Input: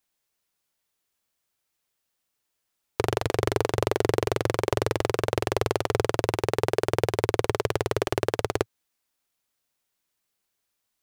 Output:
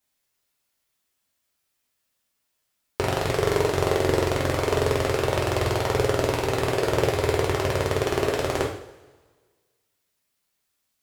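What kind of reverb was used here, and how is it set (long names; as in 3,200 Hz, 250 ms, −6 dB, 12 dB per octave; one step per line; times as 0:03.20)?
coupled-rooms reverb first 0.56 s, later 1.6 s, from −17 dB, DRR −3 dB
level −1.5 dB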